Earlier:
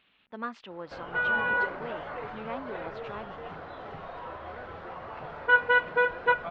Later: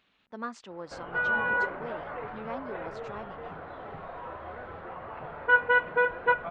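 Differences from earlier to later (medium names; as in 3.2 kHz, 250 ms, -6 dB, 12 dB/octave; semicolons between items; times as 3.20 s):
speech: remove resonant low-pass 3.1 kHz, resonance Q 1.8; background: add low-pass 2.6 kHz 12 dB/octave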